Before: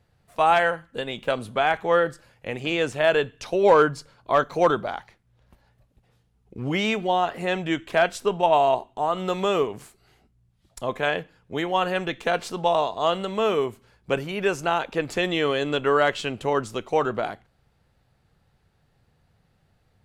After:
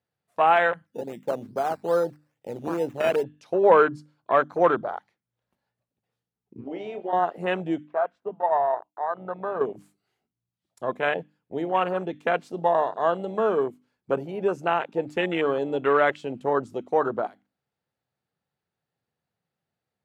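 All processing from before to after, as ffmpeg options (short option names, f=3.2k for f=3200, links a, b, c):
-filter_complex "[0:a]asettb=1/sr,asplit=3[a][b][c];[a]atrim=end=0.864[d];[b]atrim=start=0.86:end=3.24,asetpts=PTS-STARTPTS,afade=t=in:d=0.004:c=qsin,afade=t=out:st=2.376:d=0.004:c=qsin,equalizer=f=1.2k:t=o:w=1.3:g=-7.5,acrusher=samples=11:mix=1:aa=0.000001:lfo=1:lforange=6.6:lforate=2.4[e];[c]atrim=start=3.236[f];[d][e]acrossfade=d=0.004:c1=hsin:c2=qsin[g];[g][f]acrossfade=d=0.004:c1=qsin:c2=hsin,asettb=1/sr,asplit=3[h][i][j];[h]atrim=end=6.614[k];[i]atrim=start=6.61:end=7.13,asetpts=PTS-STARTPTS,afade=t=in:d=0.004:c=qsin,afade=t=out:st=0.516:d=0.004:c=qsin,acrossover=split=270 4300:gain=0.0708 1 0.224[l][m][n];[l][m][n]amix=inputs=3:normalize=0,acompressor=threshold=-28dB:ratio=2.5:attack=3.2:release=140:knee=1:detection=peak,asplit=2[o][p];[p]adelay=30,volume=-8.5dB[q];[o][q]amix=inputs=2:normalize=0,atrim=end_sample=22932[r];[j]atrim=start=7.126[s];[k][r]acrossfade=d=0.004:c1=hsin:c2=qsin[t];[t][s]acrossfade=d=0.004:c1=qsin:c2=hsin,asettb=1/sr,asplit=3[u][v][w];[u]atrim=end=7.874[x];[v]atrim=start=7.87:end=9.61,asetpts=PTS-STARTPTS,afade=t=in:d=0.004:c=qsin,afade=t=out:st=1.736:d=0.004:c=qsin,lowpass=1.3k,agate=range=-33dB:threshold=-48dB:ratio=3:release=100:detection=peak,equalizer=f=290:w=1:g=-14[y];[w]atrim=start=9.606[z];[x][y]acrossfade=d=0.004:c1=hsin:c2=qsin[aa];[aa][z]acrossfade=d=0.004:c1=qsin:c2=hsin,afwtdn=0.0447,highpass=160,bandreject=f=50:t=h:w=6,bandreject=f=100:t=h:w=6,bandreject=f=150:t=h:w=6,bandreject=f=200:t=h:w=6,bandreject=f=250:t=h:w=6,bandreject=f=300:t=h:w=6"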